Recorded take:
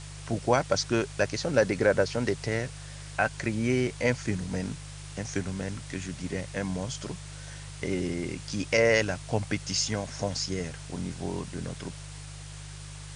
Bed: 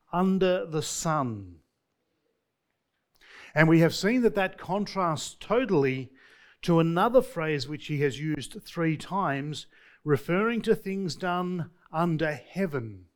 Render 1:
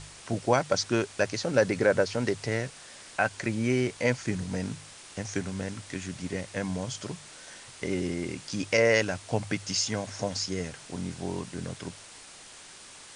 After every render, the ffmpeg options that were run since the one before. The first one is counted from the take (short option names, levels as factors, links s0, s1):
-af "bandreject=f=50:t=h:w=4,bandreject=f=100:t=h:w=4,bandreject=f=150:t=h:w=4"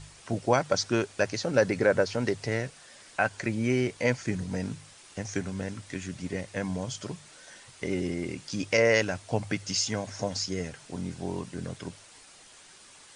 -af "afftdn=nr=6:nf=-48"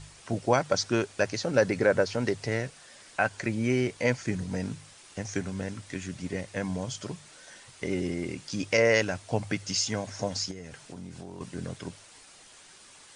-filter_complex "[0:a]asettb=1/sr,asplit=3[s0][s1][s2];[s0]atrim=end=10.514[s3];[s1]atrim=start=10.51:end=11.41,asetpts=PTS-STARTPTS,afade=t=in:d=0.004:c=qsin,afade=t=out:st=0.896:d=0.004:c=qsin,acompressor=threshold=0.0141:ratio=6:attack=3.2:release=140:knee=1:detection=peak[s4];[s2]atrim=start=11.406[s5];[s3][s4]acrossfade=d=0.004:c1=hsin:c2=qsin[s6];[s6][s5]acrossfade=d=0.004:c1=qsin:c2=hsin"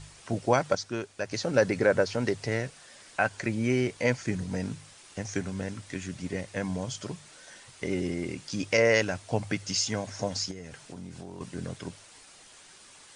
-filter_complex "[0:a]asplit=3[s0][s1][s2];[s0]atrim=end=0.752[s3];[s1]atrim=start=0.748:end=1.312,asetpts=PTS-STARTPTS,volume=0.447[s4];[s2]atrim=start=1.308[s5];[s3][s4]acrossfade=d=0.004:c1=hsin:c2=hsin[s6];[s6][s5]acrossfade=d=0.004:c1=hsin:c2=hsin"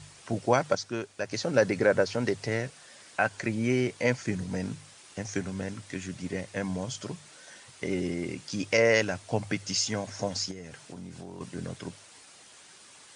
-af "highpass=83"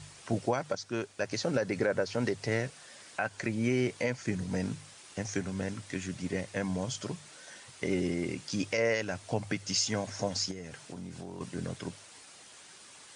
-af "alimiter=limit=0.126:level=0:latency=1:release=271"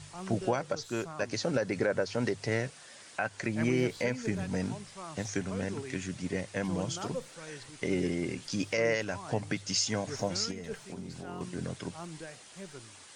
-filter_complex "[1:a]volume=0.133[s0];[0:a][s0]amix=inputs=2:normalize=0"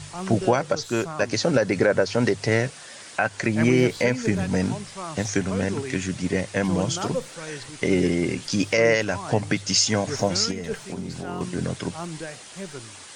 -af "volume=2.99"